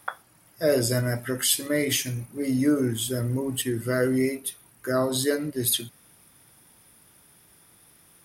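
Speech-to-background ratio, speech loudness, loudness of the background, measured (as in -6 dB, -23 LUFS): 15.0 dB, -25.5 LUFS, -40.5 LUFS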